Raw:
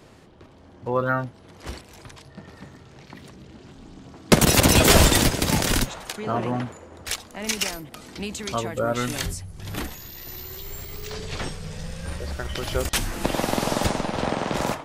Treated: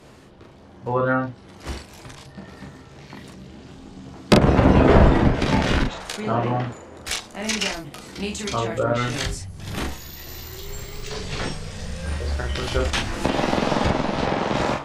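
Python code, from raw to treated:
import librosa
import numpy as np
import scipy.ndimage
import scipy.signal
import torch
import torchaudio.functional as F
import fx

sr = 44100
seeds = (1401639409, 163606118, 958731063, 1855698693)

y = fx.env_lowpass_down(x, sr, base_hz=1300.0, full_db=-14.5)
y = fx.room_early_taps(y, sr, ms=(15, 42), db=(-6.0, -3.5))
y = F.gain(torch.from_numpy(y), 1.0).numpy()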